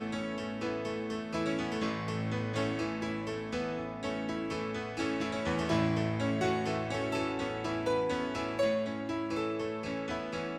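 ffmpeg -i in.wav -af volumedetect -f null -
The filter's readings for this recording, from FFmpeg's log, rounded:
mean_volume: -33.3 dB
max_volume: -17.2 dB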